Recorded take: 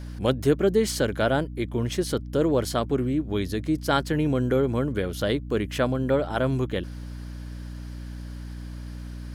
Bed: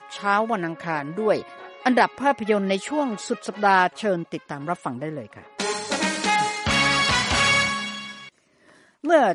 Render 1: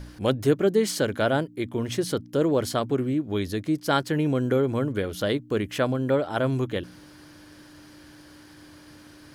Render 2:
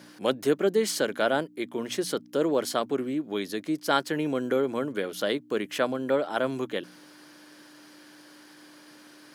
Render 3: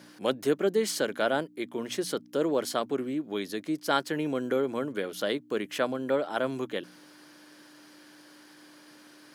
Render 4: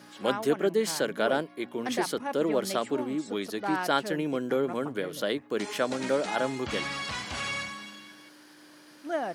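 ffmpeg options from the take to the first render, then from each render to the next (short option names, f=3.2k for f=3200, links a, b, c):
-af "bandreject=f=60:t=h:w=4,bandreject=f=120:t=h:w=4,bandreject=f=180:t=h:w=4,bandreject=f=240:t=h:w=4"
-af "highpass=f=160:w=0.5412,highpass=f=160:w=1.3066,lowshelf=f=210:g=-10.5"
-af "volume=-2dB"
-filter_complex "[1:a]volume=-14dB[a];[0:a][a]amix=inputs=2:normalize=0"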